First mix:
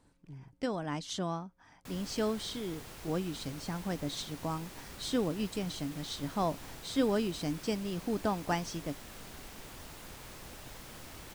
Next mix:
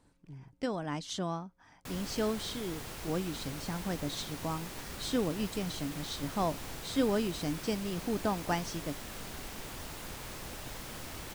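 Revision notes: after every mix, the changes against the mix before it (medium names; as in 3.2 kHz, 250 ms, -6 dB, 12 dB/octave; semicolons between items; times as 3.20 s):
background +5.0 dB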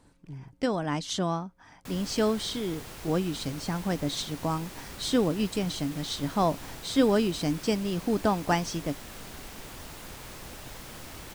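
speech +6.5 dB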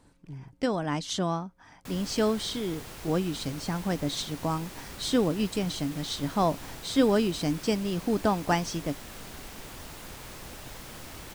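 no change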